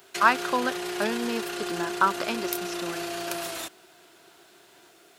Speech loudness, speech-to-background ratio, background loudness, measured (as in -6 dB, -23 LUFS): -28.0 LUFS, 4.0 dB, -32.0 LUFS